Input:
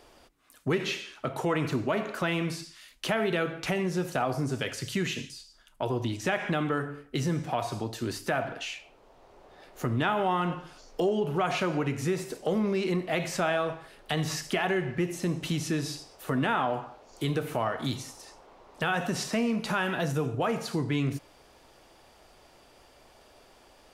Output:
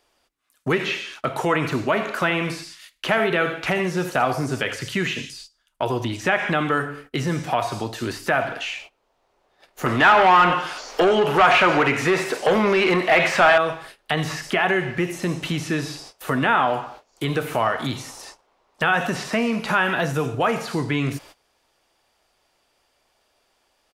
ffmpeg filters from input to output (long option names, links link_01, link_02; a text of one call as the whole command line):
ffmpeg -i in.wav -filter_complex "[0:a]asplit=3[link_01][link_02][link_03];[link_01]afade=type=out:start_time=2.2:duration=0.02[link_04];[link_02]aecho=1:1:80:0.224,afade=type=in:start_time=2.2:duration=0.02,afade=type=out:start_time=4.89:duration=0.02[link_05];[link_03]afade=type=in:start_time=4.89:duration=0.02[link_06];[link_04][link_05][link_06]amix=inputs=3:normalize=0,asettb=1/sr,asplit=3[link_07][link_08][link_09];[link_07]atrim=end=9.864[link_10];[link_08]atrim=start=9.86:end=13.58,asetpts=PTS-STARTPTS,afade=type=in:duration=0.004:curve=qsin,afade=type=out:start_time=3.716:duration=0.004:curve=qsin,asplit=2[link_11][link_12];[link_12]highpass=frequency=720:poles=1,volume=18dB,asoftclip=type=tanh:threshold=-15dB[link_13];[link_11][link_13]amix=inputs=2:normalize=0,lowpass=frequency=7200:poles=1,volume=-6dB[link_14];[link_09]atrim=start=13.576[link_15];[link_10][link_14]acrossfade=duration=0.004:curve1=hsin:curve2=qsin[link_16];[link_16][link_15]acrossfade=duration=0.004:curve1=qsin:curve2=hsin,agate=range=-19dB:threshold=-49dB:ratio=16:detection=peak,acrossover=split=2700[link_17][link_18];[link_18]acompressor=threshold=-49dB:ratio=4:attack=1:release=60[link_19];[link_17][link_19]amix=inputs=2:normalize=0,tiltshelf=frequency=760:gain=-4.5,volume=8dB" out.wav